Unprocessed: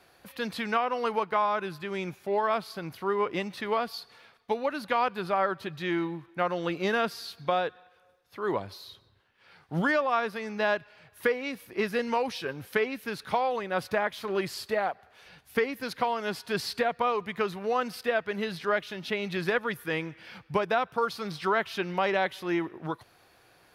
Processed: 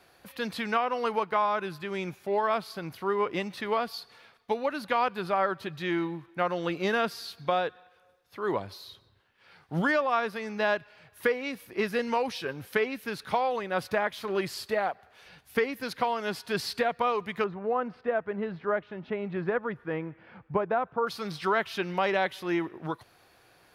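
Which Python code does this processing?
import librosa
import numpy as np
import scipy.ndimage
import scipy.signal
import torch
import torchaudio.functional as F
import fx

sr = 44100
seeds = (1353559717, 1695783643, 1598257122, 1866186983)

y = fx.lowpass(x, sr, hz=1300.0, slope=12, at=(17.44, 21.07))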